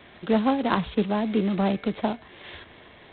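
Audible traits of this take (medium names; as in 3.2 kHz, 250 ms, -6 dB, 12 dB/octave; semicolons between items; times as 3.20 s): G.726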